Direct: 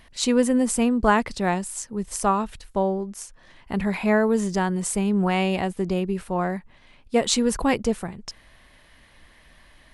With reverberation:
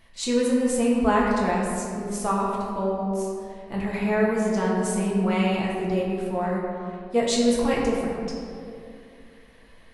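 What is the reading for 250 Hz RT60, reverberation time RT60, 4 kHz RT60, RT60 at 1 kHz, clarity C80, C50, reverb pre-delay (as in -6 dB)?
2.8 s, 2.6 s, 1.2 s, 2.2 s, 1.5 dB, 0.0 dB, 4 ms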